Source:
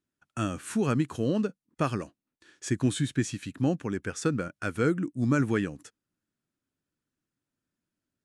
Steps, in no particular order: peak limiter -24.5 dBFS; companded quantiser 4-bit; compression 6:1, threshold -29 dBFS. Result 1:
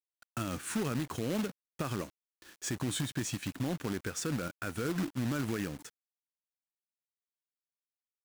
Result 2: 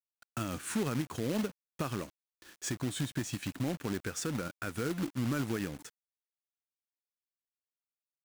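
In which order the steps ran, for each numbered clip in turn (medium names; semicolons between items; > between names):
peak limiter > compression > companded quantiser; compression > peak limiter > companded quantiser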